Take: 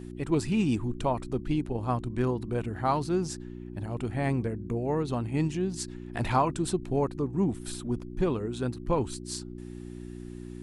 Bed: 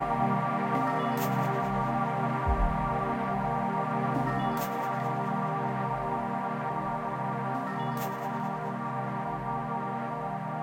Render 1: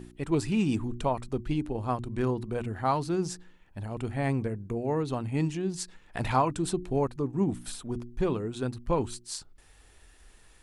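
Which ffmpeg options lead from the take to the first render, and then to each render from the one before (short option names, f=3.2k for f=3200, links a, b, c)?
-af "bandreject=f=60:t=h:w=4,bandreject=f=120:t=h:w=4,bandreject=f=180:t=h:w=4,bandreject=f=240:t=h:w=4,bandreject=f=300:t=h:w=4,bandreject=f=360:t=h:w=4"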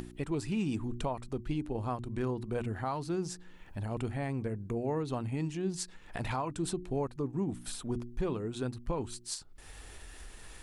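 -af "alimiter=limit=-24dB:level=0:latency=1:release=400,acompressor=mode=upward:threshold=-38dB:ratio=2.5"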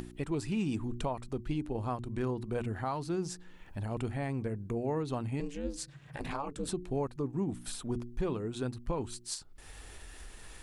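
-filter_complex "[0:a]asettb=1/sr,asplit=3[a][b][c];[a]atrim=end=5.404[d];[b]atrim=start=5.4:end=6.69,asetpts=PTS-STARTPTS,afade=t=in:d=0.004:c=qsin,afade=t=out:st=1.286:d=0.004:c=qsin,aeval=exprs='val(0)*sin(2*PI*140*n/s)':c=same[e];[c]atrim=start=6.686[f];[d][e]acrossfade=d=0.004:c1=hsin:c2=qsin[g];[g][f]acrossfade=d=0.004:c1=qsin:c2=hsin"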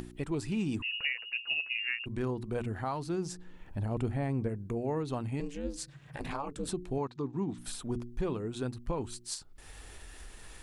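-filter_complex "[0:a]asettb=1/sr,asplit=3[a][b][c];[a]atrim=end=0.824[d];[b]atrim=start=0.82:end=2.06,asetpts=PTS-STARTPTS,afade=t=in:d=0.004:c=qsin,afade=t=out:st=1.236:d=0.004:c=qsin,lowpass=f=2.5k:t=q:w=0.5098,lowpass=f=2.5k:t=q:w=0.6013,lowpass=f=2.5k:t=q:w=0.9,lowpass=f=2.5k:t=q:w=2.563,afreqshift=-2900[e];[c]atrim=start=2.056[f];[d][e]acrossfade=d=0.004:c1=hsin:c2=qsin[g];[g][f]acrossfade=d=0.004:c1=qsin:c2=hsin,asettb=1/sr,asplit=3[h][i][j];[h]atrim=end=3.324[k];[i]atrim=start=3.32:end=4.49,asetpts=PTS-STARTPTS,afade=t=in:d=0.004:c=qsin,afade=t=out:st=1.166:d=0.004:c=qsin,tiltshelf=f=970:g=3.5[l];[j]atrim=start=4.486[m];[k][l]acrossfade=d=0.004:c1=hsin:c2=qsin[n];[n][m]acrossfade=d=0.004:c1=qsin:c2=hsin,asettb=1/sr,asplit=3[o][p][q];[o]atrim=end=6.984[r];[p]atrim=start=6.98:end=7.58,asetpts=PTS-STARTPTS,afade=t=in:d=0.004:c=qsin,afade=t=out:st=0.596:d=0.004:c=qsin,highpass=120,equalizer=f=570:t=q:w=4:g=-7,equalizer=f=980:t=q:w=4:g=4,equalizer=f=3.8k:t=q:w=4:g=8,lowpass=f=6.7k:w=0.5412,lowpass=f=6.7k:w=1.3066[s];[q]atrim=start=7.576[t];[r][s]acrossfade=d=0.004:c1=hsin:c2=qsin[u];[u][t]acrossfade=d=0.004:c1=qsin:c2=hsin"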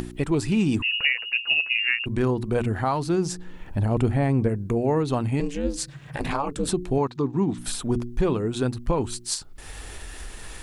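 -af "volume=10.5dB"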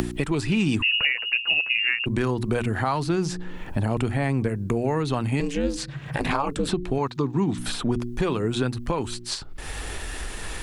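-filter_complex "[0:a]acrossover=split=130|1200|4200[a][b][c][d];[a]acompressor=threshold=-37dB:ratio=4[e];[b]acompressor=threshold=-29dB:ratio=4[f];[c]acompressor=threshold=-25dB:ratio=4[g];[d]acompressor=threshold=-48dB:ratio=4[h];[e][f][g][h]amix=inputs=4:normalize=0,asplit=2[i][j];[j]alimiter=limit=-21.5dB:level=0:latency=1:release=434,volume=2dB[k];[i][k]amix=inputs=2:normalize=0"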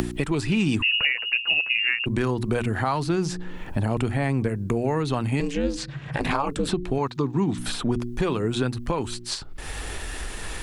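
-filter_complex "[0:a]asettb=1/sr,asplit=3[a][b][c];[a]atrim=end=5.514[d];[b]atrim=start=5.51:end=6.23,asetpts=PTS-STARTPTS,afade=t=in:d=0.004:c=qsin,afade=t=out:st=0.716:d=0.004:c=qsin,lowpass=7.8k[e];[c]atrim=start=6.226[f];[d][e]acrossfade=d=0.004:c1=hsin:c2=qsin[g];[g][f]acrossfade=d=0.004:c1=qsin:c2=hsin"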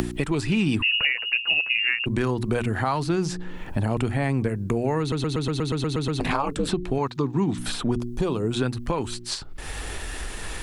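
-filter_complex "[0:a]asettb=1/sr,asplit=3[a][b][c];[a]atrim=end=0.604[d];[b]atrim=start=0.6:end=1.25,asetpts=PTS-STARTPTS,afade=t=in:d=0.004:c=qsin,afade=t=out:st=0.646:d=0.004:c=qsin,equalizer=f=6.7k:t=o:w=0.23:g=-15[e];[c]atrim=start=1.246[f];[d][e]acrossfade=d=0.004:c1=hsin:c2=qsin[g];[g][f]acrossfade=d=0.004:c1=qsin:c2=hsin,asettb=1/sr,asplit=3[h][i][j];[h]atrim=end=7.954[k];[i]atrim=start=7.95:end=8.51,asetpts=PTS-STARTPTS,afade=t=in:d=0.004:c=qsin,afade=t=out:st=0.556:d=0.004:c=qsin,equalizer=f=1.9k:t=o:w=1.1:g=-10[l];[j]atrim=start=8.506[m];[k][l]acrossfade=d=0.004:c1=hsin:c2=qsin[n];[n][m]acrossfade=d=0.004:c1=qsin:c2=hsin,asplit=11[o][p][q][r][s][t][u][v][w][x][y];[o]atrim=end=5.122[z];[p]atrim=start=4.998:end=5.122[aa];[q]atrim=start=4.998:end=5.122[ab];[r]atrim=start=4.998:end=5.122[ac];[s]atrim=start=4.998:end=5.122[ad];[t]atrim=start=4.998:end=5.122[ae];[u]atrim=start=4.998:end=5.122[af];[v]atrim=start=4.998:end=5.122[ag];[w]atrim=start=4.998:end=5.122[ah];[x]atrim=start=4.998:end=5.122[ai];[y]atrim=start=6.198[aj];[z][aa]acrossfade=d=0.004:c1=hsin:c2=hsin[ak];[ak][ab]acrossfade=d=0.004:c1=hsin:c2=hsin[al];[al][ac]acrossfade=d=0.004:c1=hsin:c2=hsin[am];[am][ad]acrossfade=d=0.004:c1=hsin:c2=hsin[an];[an][ae]acrossfade=d=0.004:c1=hsin:c2=hsin[ao];[ao][af]acrossfade=d=0.004:c1=hsin:c2=hsin[ap];[ap][ag]acrossfade=d=0.004:c1=hsin:c2=hsin[aq];[aq][ah]acrossfade=d=0.004:c1=hsin:c2=hsin[ar];[ar][ai]acrossfade=d=0.004:c1=hsin:c2=hsin[as];[as][aj]acrossfade=d=0.004:c1=hsin:c2=hsin"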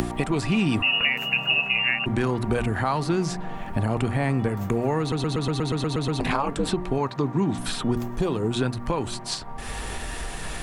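-filter_complex "[1:a]volume=-8.5dB[a];[0:a][a]amix=inputs=2:normalize=0"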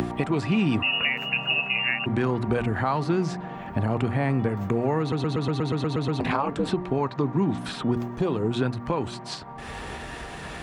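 -af "highpass=75,equalizer=f=12k:t=o:w=1.7:g=-14"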